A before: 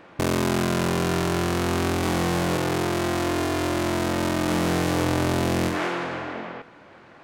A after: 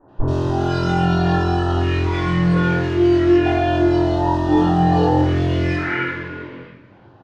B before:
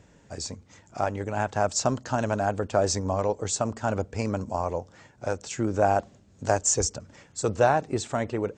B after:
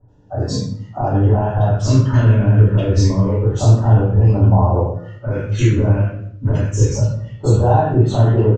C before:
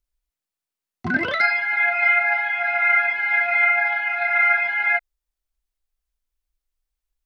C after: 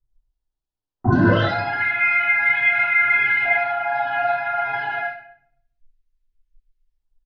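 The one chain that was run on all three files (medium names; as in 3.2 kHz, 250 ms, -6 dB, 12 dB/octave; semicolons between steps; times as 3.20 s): spectral noise reduction 17 dB; peaking EQ 110 Hz +13 dB 0.36 oct; in parallel at +3 dB: compression, threshold -28 dBFS; on the sum: peak limiter -16.5 dBFS; LFO notch square 0.29 Hz 760–2200 Hz; vibrato 3.4 Hz 6 cents; distance through air 150 m; bands offset in time lows, highs 80 ms, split 1.4 kHz; simulated room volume 110 m³, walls mixed, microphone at 4.1 m; trim -3.5 dB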